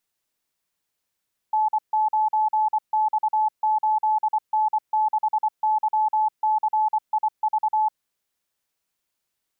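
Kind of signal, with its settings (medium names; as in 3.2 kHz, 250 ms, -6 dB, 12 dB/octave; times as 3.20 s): Morse "N9X8N6YCIV" 24 wpm 863 Hz -17.5 dBFS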